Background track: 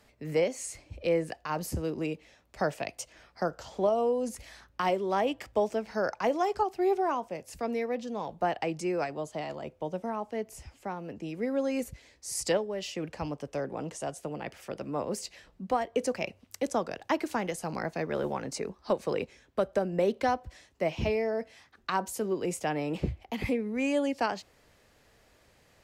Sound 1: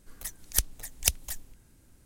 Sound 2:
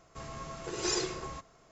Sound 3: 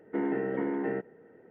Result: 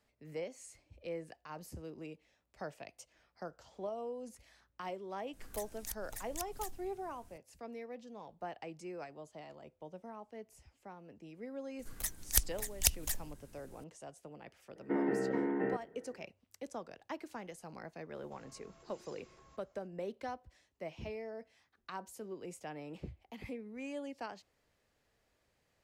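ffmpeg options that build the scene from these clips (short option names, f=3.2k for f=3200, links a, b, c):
-filter_complex "[1:a]asplit=2[a][b];[0:a]volume=-14.5dB[c];[a]acompressor=threshold=-36dB:ratio=6:attack=3.2:release=140:knee=1:detection=peak[d];[b]alimiter=level_in=6.5dB:limit=-1dB:release=50:level=0:latency=1[e];[2:a]acompressor=threshold=-43dB:ratio=6:attack=3.2:release=140:knee=1:detection=peak[f];[d]atrim=end=2.05,asetpts=PTS-STARTPTS,volume=-2.5dB,afade=t=in:d=0.004:c=hsin,afade=t=out:st=2.046:d=0.004:c=hsin,adelay=235053S[g];[e]atrim=end=2.05,asetpts=PTS-STARTPTS,volume=-6dB,afade=t=in:d=0.004:c=hsin,afade=t=out:st=2.046:d=0.004:c=hsin,adelay=11790[h];[3:a]atrim=end=1.5,asetpts=PTS-STARTPTS,volume=-3dB,afade=t=in:d=0.004:c=hsin,afade=t=out:st=1.496:d=0.004:c=hsin,adelay=650916S[i];[f]atrim=end=1.71,asetpts=PTS-STARTPTS,volume=-14.5dB,afade=t=in:d=0.004:c=hsin,afade=t=out:st=1.706:d=0.004:c=hsin,adelay=18160[j];[c][g][h][i][j]amix=inputs=5:normalize=0"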